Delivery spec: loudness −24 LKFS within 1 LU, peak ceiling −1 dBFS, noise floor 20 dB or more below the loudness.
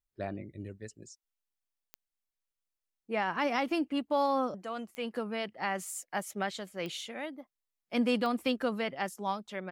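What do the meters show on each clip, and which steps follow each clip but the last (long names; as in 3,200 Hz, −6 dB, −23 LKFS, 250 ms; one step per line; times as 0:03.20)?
number of clicks 4; integrated loudness −33.5 LKFS; sample peak −19.0 dBFS; target loudness −24.0 LKFS
→ click removal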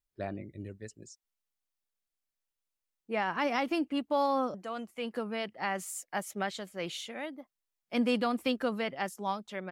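number of clicks 0; integrated loudness −33.5 LKFS; sample peak −19.0 dBFS; target loudness −24.0 LKFS
→ level +9.5 dB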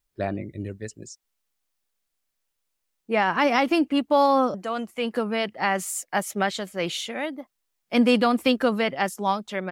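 integrated loudness −24.0 LKFS; sample peak −9.5 dBFS; background noise floor −79 dBFS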